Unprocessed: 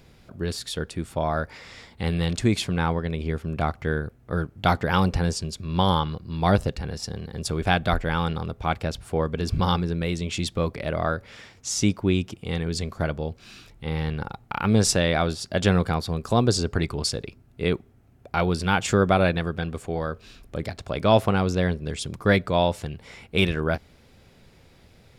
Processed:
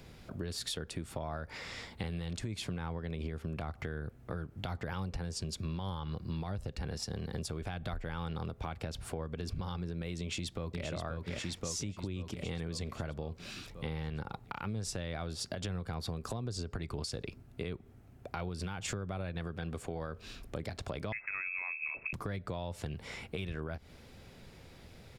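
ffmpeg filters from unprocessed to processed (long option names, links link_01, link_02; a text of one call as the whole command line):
ffmpeg -i in.wav -filter_complex "[0:a]asplit=2[link_01][link_02];[link_02]afade=type=in:start_time=10.2:duration=0.01,afade=type=out:start_time=10.85:duration=0.01,aecho=0:1:530|1060|1590|2120|2650|3180|3710|4240|4770:0.630957|0.378574|0.227145|0.136287|0.0817721|0.0490632|0.0294379|0.0176628|0.0105977[link_03];[link_01][link_03]amix=inputs=2:normalize=0,asettb=1/sr,asplit=3[link_04][link_05][link_06];[link_04]atrim=end=21.124[link_07];[link_05]atrim=start=21.12:end=22.13,asetpts=PTS-STARTPTS,afade=type=in:duration=0.004:curve=qsin,afade=type=out:start_time=1.006:duration=0.004:curve=qsin,lowpass=frequency=2300:width_type=q:width=0.5098,lowpass=frequency=2300:width_type=q:width=0.6013,lowpass=frequency=2300:width_type=q:width=0.9,lowpass=frequency=2300:width_type=q:width=2.563,afreqshift=-2700[link_08];[link_06]atrim=start=22.126[link_09];[link_07][link_08]acrossfade=duration=0.004:curve1=hsin:curve2=qsin[link_10];[link_10][link_09]acrossfade=duration=0.004:curve1=qsin:curve2=hsin,acrossover=split=120[link_11][link_12];[link_12]acompressor=threshold=-26dB:ratio=6[link_13];[link_11][link_13]amix=inputs=2:normalize=0,alimiter=limit=-23dB:level=0:latency=1:release=203,acompressor=threshold=-34dB:ratio=6" out.wav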